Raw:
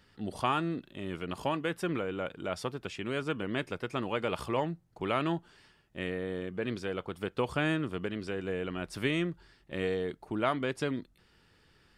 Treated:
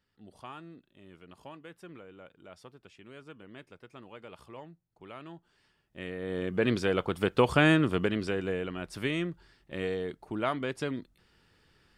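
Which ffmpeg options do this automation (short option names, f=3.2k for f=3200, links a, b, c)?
-af "volume=7.5dB,afade=t=in:st=5.33:d=0.85:silence=0.237137,afade=t=in:st=6.18:d=0.44:silence=0.298538,afade=t=out:st=7.97:d=0.76:silence=0.375837"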